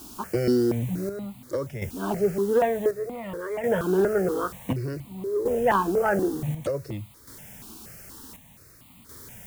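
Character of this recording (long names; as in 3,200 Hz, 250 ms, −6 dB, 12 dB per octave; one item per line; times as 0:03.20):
a quantiser's noise floor 8 bits, dither triangular
chopped level 0.55 Hz, depth 60%, duty 60%
notches that jump at a steady rate 4.2 Hz 530–1,600 Hz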